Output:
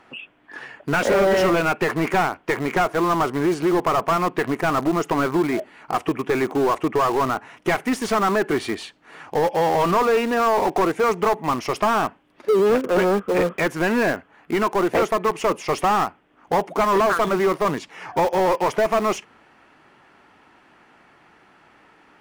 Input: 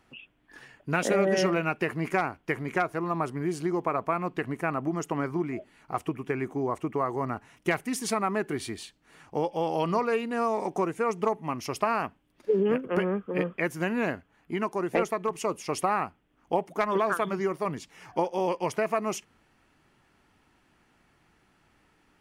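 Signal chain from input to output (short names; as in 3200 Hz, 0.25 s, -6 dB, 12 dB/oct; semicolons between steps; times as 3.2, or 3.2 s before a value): overdrive pedal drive 24 dB, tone 1300 Hz, clips at -11 dBFS; in parallel at -12 dB: bit-crush 4-bit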